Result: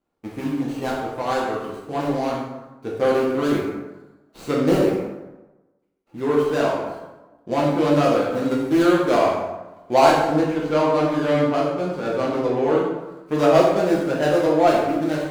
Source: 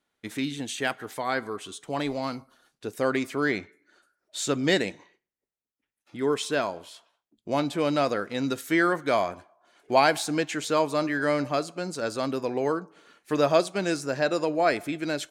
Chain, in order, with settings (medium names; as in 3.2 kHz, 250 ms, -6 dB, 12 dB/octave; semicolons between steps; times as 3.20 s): median filter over 25 samples; 10.15–12.78 s: treble shelf 6.2 kHz -9 dB; plate-style reverb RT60 1.1 s, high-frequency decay 0.6×, DRR -5 dB; trim +1.5 dB